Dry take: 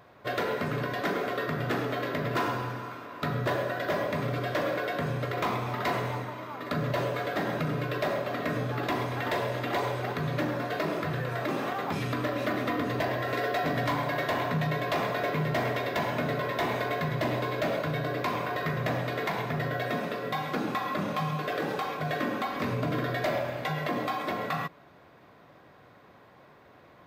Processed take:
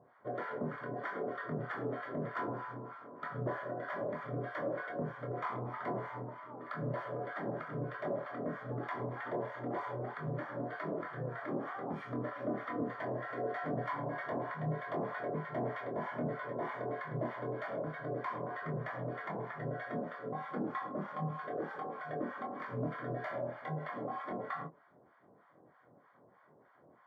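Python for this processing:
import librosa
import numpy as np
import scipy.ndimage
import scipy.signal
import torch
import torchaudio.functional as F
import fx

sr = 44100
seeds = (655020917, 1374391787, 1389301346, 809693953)

y = scipy.signal.sosfilt(scipy.signal.butter(2, 140.0, 'highpass', fs=sr, output='sos'), x)
y = fx.harmonic_tremolo(y, sr, hz=3.2, depth_pct=100, crossover_hz=840.0)
y = scipy.signal.savgol_filter(y, 41, 4, mode='constant')
y = fx.doubler(y, sr, ms=25.0, db=-8.0)
y = F.gain(torch.from_numpy(y), -4.0).numpy()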